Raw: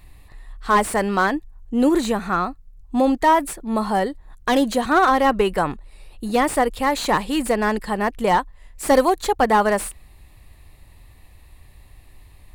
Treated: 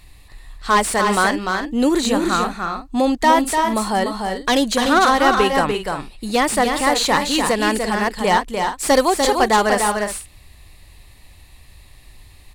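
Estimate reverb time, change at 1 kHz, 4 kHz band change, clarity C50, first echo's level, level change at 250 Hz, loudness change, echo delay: no reverb, +2.5 dB, +9.0 dB, no reverb, -5.0 dB, +1.5 dB, +2.5 dB, 296 ms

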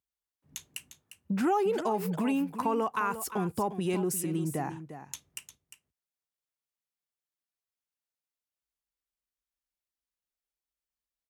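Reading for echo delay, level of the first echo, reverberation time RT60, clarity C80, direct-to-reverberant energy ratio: 352 ms, -11.5 dB, no reverb, no reverb, no reverb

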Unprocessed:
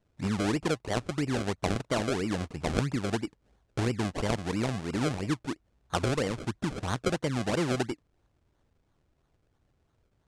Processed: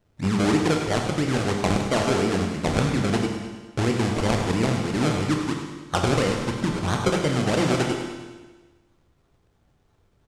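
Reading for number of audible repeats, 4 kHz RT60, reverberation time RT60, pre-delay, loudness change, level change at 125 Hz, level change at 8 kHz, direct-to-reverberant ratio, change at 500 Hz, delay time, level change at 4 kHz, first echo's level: 3, 1.3 s, 1.3 s, 20 ms, +7.5 dB, +7.5 dB, +7.5 dB, 1.0 dB, +7.5 dB, 101 ms, +7.5 dB, -9.5 dB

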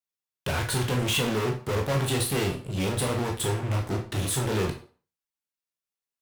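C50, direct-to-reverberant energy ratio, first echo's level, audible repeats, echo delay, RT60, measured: 8.0 dB, 1.0 dB, no echo, no echo, no echo, 0.40 s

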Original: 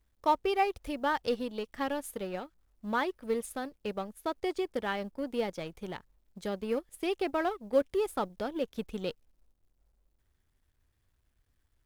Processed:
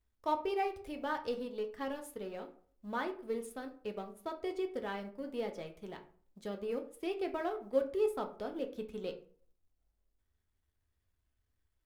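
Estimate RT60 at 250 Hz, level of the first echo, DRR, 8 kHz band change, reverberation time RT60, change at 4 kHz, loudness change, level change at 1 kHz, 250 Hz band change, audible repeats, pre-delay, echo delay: 0.55 s, no echo, 4.0 dB, -8.5 dB, 0.45 s, -8.0 dB, -5.0 dB, -6.5 dB, -5.5 dB, no echo, 3 ms, no echo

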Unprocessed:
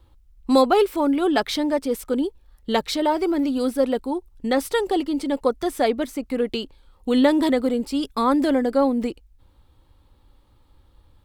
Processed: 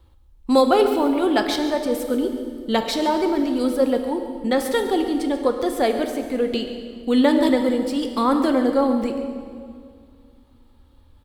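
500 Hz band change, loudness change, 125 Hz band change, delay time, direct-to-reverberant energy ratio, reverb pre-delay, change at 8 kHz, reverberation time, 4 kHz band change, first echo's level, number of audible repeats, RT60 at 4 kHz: +1.5 dB, +1.0 dB, no reading, 139 ms, 5.5 dB, 5 ms, +1.0 dB, 2.2 s, +1.0 dB, -14.0 dB, 1, 1.8 s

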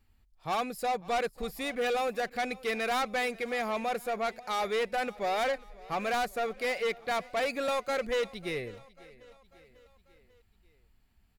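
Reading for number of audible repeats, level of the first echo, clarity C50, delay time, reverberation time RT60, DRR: 3, -21.5 dB, no reverb, 544 ms, no reverb, no reverb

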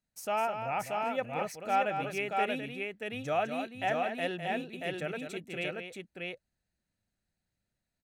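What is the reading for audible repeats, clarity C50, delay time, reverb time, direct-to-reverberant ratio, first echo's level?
2, no reverb, 205 ms, no reverb, no reverb, -8.0 dB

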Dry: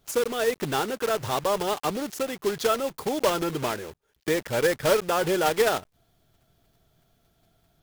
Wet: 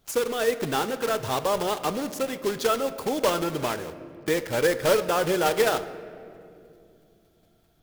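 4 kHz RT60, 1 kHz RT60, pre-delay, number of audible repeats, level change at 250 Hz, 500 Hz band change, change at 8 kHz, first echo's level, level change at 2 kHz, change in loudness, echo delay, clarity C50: 1.4 s, 2.1 s, 4 ms, no echo, +0.5 dB, +0.5 dB, 0.0 dB, no echo, 0.0 dB, +0.5 dB, no echo, 13.5 dB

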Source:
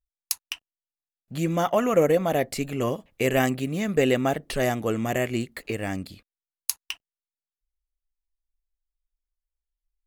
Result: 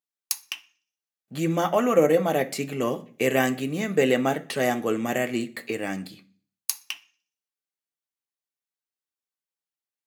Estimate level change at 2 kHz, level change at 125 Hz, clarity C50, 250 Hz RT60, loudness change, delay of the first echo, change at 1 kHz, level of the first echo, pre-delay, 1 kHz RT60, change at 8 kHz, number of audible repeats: +1.5 dB, -3.0 dB, 17.5 dB, 0.65 s, +0.5 dB, no echo, +0.5 dB, no echo, 3 ms, 0.40 s, +0.5 dB, no echo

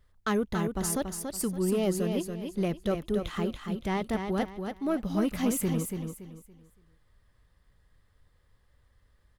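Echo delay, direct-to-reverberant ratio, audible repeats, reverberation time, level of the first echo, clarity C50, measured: 283 ms, no reverb, 3, no reverb, -6.0 dB, no reverb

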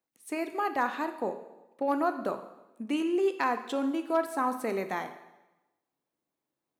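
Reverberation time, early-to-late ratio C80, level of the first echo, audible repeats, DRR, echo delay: 1.0 s, 13.0 dB, no echo, no echo, 8.0 dB, no echo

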